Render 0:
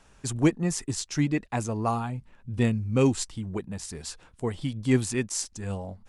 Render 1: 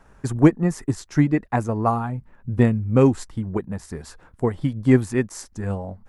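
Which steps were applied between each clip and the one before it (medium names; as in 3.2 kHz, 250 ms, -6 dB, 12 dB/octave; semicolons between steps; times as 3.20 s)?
high-order bell 4.9 kHz -11.5 dB 2.3 oct; transient shaper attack +4 dB, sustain -1 dB; trim +5 dB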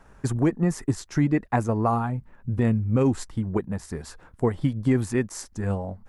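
peak limiter -12 dBFS, peak gain reduction 10 dB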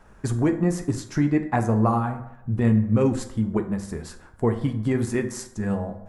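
reverberation RT60 0.80 s, pre-delay 5 ms, DRR 6 dB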